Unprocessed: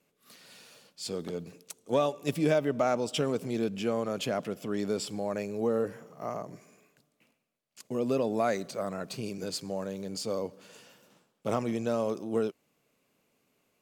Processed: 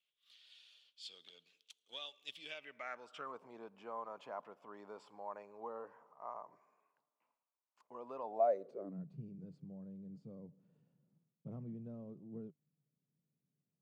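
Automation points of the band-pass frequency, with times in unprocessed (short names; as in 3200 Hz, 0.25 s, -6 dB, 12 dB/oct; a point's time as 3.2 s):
band-pass, Q 5.7
2.42 s 3300 Hz
3.41 s 970 Hz
8.19 s 970 Hz
8.82 s 370 Hz
9.04 s 150 Hz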